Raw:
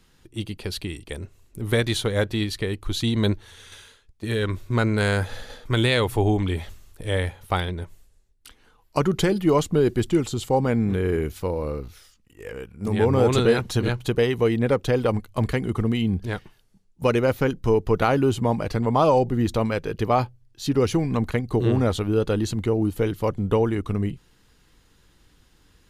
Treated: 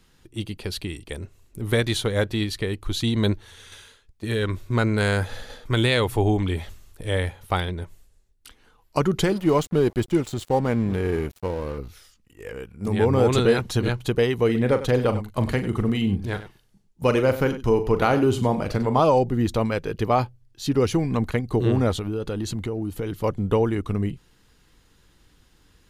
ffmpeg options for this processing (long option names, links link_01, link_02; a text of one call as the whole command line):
ffmpeg -i in.wav -filter_complex "[0:a]asettb=1/sr,asplit=3[link_01][link_02][link_03];[link_01]atrim=end=9.244[link_04];[link_02]atrim=start=9.24:end=11.78,asetpts=PTS-STARTPTS,afade=type=in:duration=0.004:curve=qsin,afade=type=out:start_time=2.536:duration=0.004:curve=qsin,aeval=exprs='sgn(val(0))*max(abs(val(0))-0.0126,0)':channel_layout=same[link_05];[link_03]atrim=start=11.776[link_06];[link_04][link_05]acrossfade=duration=0.004:curve1=hsin:curve2=qsin[link_07];[link_07][link_06]acrossfade=duration=0.004:curve1=qsin:curve2=hsin,asettb=1/sr,asplit=3[link_08][link_09][link_10];[link_08]atrim=end=14.454[link_11];[link_09]atrim=start=14.45:end=19,asetpts=PTS-STARTPTS,afade=type=in:duration=0.004:curve=qsin,afade=type=out:start_time=4.546:duration=0.004:curve=qsin,aecho=1:1:40|97:0.299|0.211,atrim=end_sample=200655[link_12];[link_10]atrim=start=18.996[link_13];[link_11][link_12]acrossfade=duration=0.004:curve1=hsin:curve2=qsin[link_14];[link_14][link_13]acrossfade=duration=0.004:curve1=qsin:curve2=hsin,asettb=1/sr,asplit=3[link_15][link_16][link_17];[link_15]atrim=end=21.964[link_18];[link_16]atrim=start=21.96:end=23.24,asetpts=PTS-STARTPTS,afade=type=in:duration=0.004:curve=qsin,afade=type=out:start_time=1.276:duration=0.004:curve=qsin,acompressor=threshold=-23dB:ratio=6:attack=3.2:release=140:knee=1:detection=peak[link_19];[link_17]atrim=start=23.236[link_20];[link_18][link_19]acrossfade=duration=0.004:curve1=hsin:curve2=qsin[link_21];[link_21][link_20]acrossfade=duration=0.004:curve1=qsin:curve2=hsin" out.wav